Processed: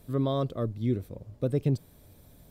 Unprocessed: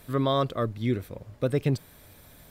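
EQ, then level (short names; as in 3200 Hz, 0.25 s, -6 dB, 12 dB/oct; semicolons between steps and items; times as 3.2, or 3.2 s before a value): bell 1700 Hz -12 dB 2.3 oct; high shelf 4600 Hz -7 dB; 0.0 dB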